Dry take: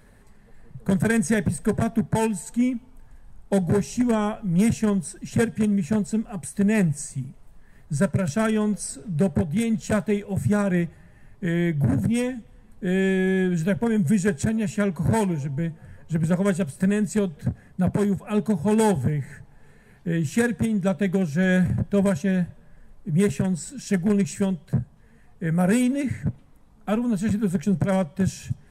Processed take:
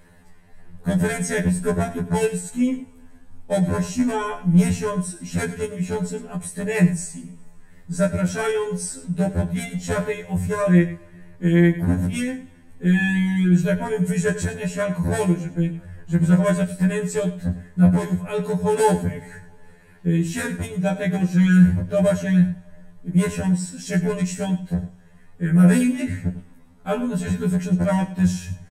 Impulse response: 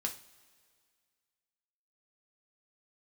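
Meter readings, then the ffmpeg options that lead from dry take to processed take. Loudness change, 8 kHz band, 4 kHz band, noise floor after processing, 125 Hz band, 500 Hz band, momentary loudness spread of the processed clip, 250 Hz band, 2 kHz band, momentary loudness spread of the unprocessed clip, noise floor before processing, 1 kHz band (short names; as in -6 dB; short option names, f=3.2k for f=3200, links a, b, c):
+2.0 dB, +2.5 dB, +2.5 dB, -48 dBFS, +4.0 dB, +1.5 dB, 11 LU, +1.5 dB, +2.5 dB, 9 LU, -52 dBFS, +2.5 dB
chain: -filter_complex "[0:a]aecho=1:1:100:0.2,asplit=2[a][b];[1:a]atrim=start_sample=2205[c];[b][c]afir=irnorm=-1:irlink=0,volume=-3dB[d];[a][d]amix=inputs=2:normalize=0,afftfilt=real='re*2*eq(mod(b,4),0)':imag='im*2*eq(mod(b,4),0)':win_size=2048:overlap=0.75"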